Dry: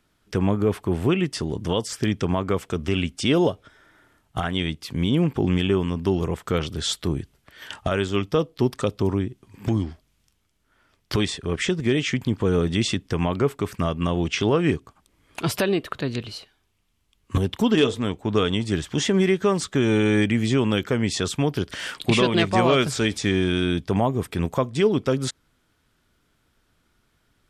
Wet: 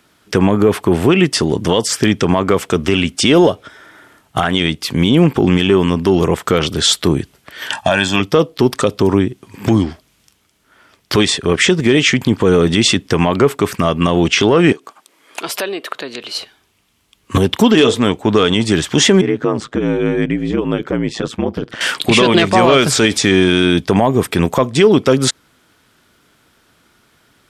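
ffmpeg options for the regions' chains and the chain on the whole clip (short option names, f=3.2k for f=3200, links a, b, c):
-filter_complex "[0:a]asettb=1/sr,asplit=3[a][b][c];[a]atrim=end=7.724[d];[b]atrim=start=7.72:end=8.2,asetpts=PTS-STARTPTS,afade=t=in:d=0.004:c=qsin,afade=t=out:st=0.476:d=0.004:c=qsin,highpass=f=190:p=1,aecho=1:1:1.2:0.83,atrim=end_sample=21168[e];[c]atrim=start=8.196[f];[d][e]acrossfade=d=0.004:c1=hsin:c2=qsin[g];[g][f]acrossfade=d=0.004:c1=qsin:c2=hsin,asettb=1/sr,asplit=3[h][i][j];[h]atrim=end=14.724[k];[i]atrim=start=14.72:end=16.35,asetpts=PTS-STARTPTS,afade=t=in:d=0.004:c=qsin,afade=t=out:st=1.626:d=0.004:c=qsin,acompressor=threshold=-38dB:ratio=2:attack=3.2:release=140:knee=1:detection=peak,highpass=380[l];[j]atrim=start=16.346[m];[k][l]acrossfade=d=0.004:c1=hsin:c2=qsin[n];[n][m]acrossfade=d=0.004:c1=qsin:c2=hsin,asettb=1/sr,asplit=3[o][p][q];[o]atrim=end=19.214[r];[p]atrim=start=19.21:end=21.81,asetpts=PTS-STARTPTS,afade=t=in:d=0.004:c=qsin,afade=t=out:st=2.596:d=0.004:c=qsin,lowpass=f=1.1k:p=1,acompressor=threshold=-25dB:ratio=2:attack=3.2:release=140:knee=1:detection=peak,aeval=exprs='val(0)*sin(2*PI*56*n/s)':c=same[s];[q]atrim=start=21.806[t];[r][s]acrossfade=d=0.004:c1=hsin:c2=qsin[u];[u][t]acrossfade=d=0.004:c1=qsin:c2=hsin,highpass=f=210:p=1,acontrast=63,alimiter=level_in=9dB:limit=-1dB:release=50:level=0:latency=1,volume=-1dB"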